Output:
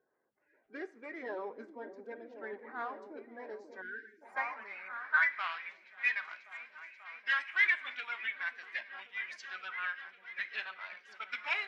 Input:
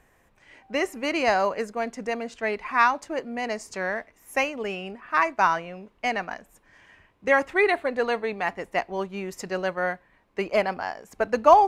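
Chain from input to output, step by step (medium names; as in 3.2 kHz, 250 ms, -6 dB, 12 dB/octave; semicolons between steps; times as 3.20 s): coarse spectral quantiser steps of 30 dB; in parallel at -6 dB: hard clipper -19.5 dBFS, distortion -8 dB; on the sum: overdrive pedal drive 12 dB, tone 4 kHz, clips at -3 dBFS; formant shift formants -3 st; amplifier tone stack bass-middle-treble 5-5-5; delay with an opening low-pass 537 ms, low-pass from 400 Hz, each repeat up 1 oct, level -6 dB; on a send at -14 dB: reverberation, pre-delay 3 ms; on the sum: dynamic bell 1.6 kHz, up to +6 dB, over -43 dBFS, Q 1.1; band-pass sweep 400 Hz -> 2.6 kHz, 3.58–5.57 s; spectral selection erased 3.81–4.22 s, 470–1400 Hz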